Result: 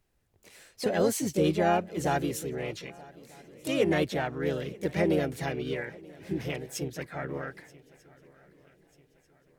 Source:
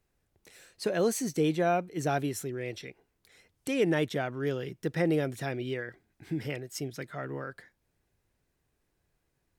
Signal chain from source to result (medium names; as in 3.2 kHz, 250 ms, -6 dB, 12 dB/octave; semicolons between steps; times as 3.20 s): harmony voices -12 st -14 dB, +3 st -4 dB; shuffle delay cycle 1241 ms, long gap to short 3:1, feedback 40%, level -23 dB